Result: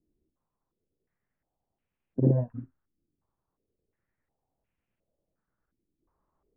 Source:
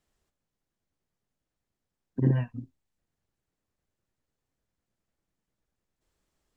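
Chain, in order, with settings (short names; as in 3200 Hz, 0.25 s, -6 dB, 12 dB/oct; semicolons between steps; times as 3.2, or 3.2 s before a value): modulation noise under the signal 30 dB; air absorption 330 m; stepped low-pass 2.8 Hz 320–2600 Hz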